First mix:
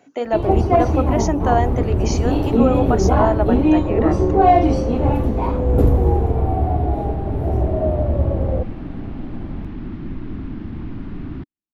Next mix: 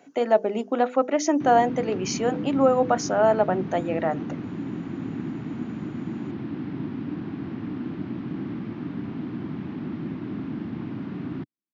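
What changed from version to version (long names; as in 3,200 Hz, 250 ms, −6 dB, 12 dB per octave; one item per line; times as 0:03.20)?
first sound: muted
master: add high-pass filter 130 Hz 24 dB per octave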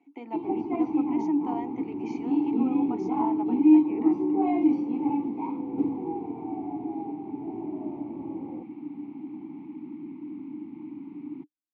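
first sound: unmuted
master: add formant filter u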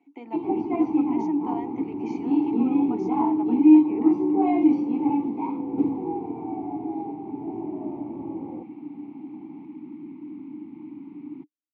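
first sound +3.5 dB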